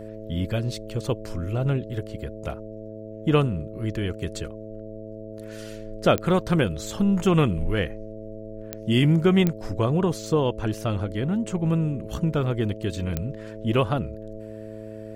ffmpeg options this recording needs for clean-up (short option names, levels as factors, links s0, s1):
-af "adeclick=t=4,bandreject=f=108.5:t=h:w=4,bandreject=f=217:t=h:w=4,bandreject=f=325.5:t=h:w=4,bandreject=f=434:t=h:w=4,bandreject=f=542.5:t=h:w=4,bandreject=f=651:t=h:w=4"